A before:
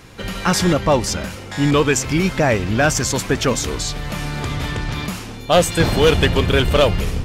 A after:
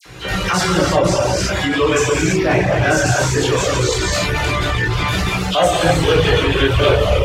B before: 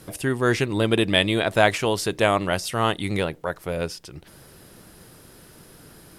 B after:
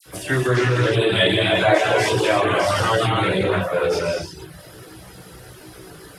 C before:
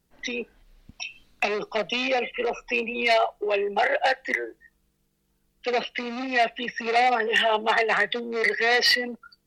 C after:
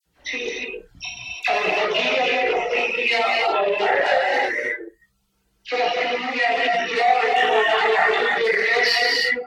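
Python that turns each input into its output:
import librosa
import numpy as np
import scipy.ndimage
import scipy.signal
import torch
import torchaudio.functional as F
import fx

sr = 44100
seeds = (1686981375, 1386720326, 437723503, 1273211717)

p1 = fx.highpass(x, sr, hz=94.0, slope=6)
p2 = fx.peak_eq(p1, sr, hz=220.0, db=-12.5, octaves=0.28)
p3 = fx.dispersion(p2, sr, late='lows', ms=58.0, hz=2000.0)
p4 = p3 + fx.room_early_taps(p3, sr, ms=(32, 61), db=(-5.5, -12.5), dry=0)
p5 = fx.rev_gated(p4, sr, seeds[0], gate_ms=370, shape='flat', drr_db=-3.0)
p6 = fx.chorus_voices(p5, sr, voices=6, hz=0.53, base_ms=17, depth_ms=1.6, mix_pct=45)
p7 = fx.high_shelf(p6, sr, hz=6700.0, db=-6.0)
p8 = fx.over_compress(p7, sr, threshold_db=-25.0, ratio=-1.0)
p9 = p7 + F.gain(torch.from_numpy(p8), -2.0).numpy()
p10 = fx.dereverb_blind(p9, sr, rt60_s=0.56)
y = fx.doppler_dist(p10, sr, depth_ms=0.11)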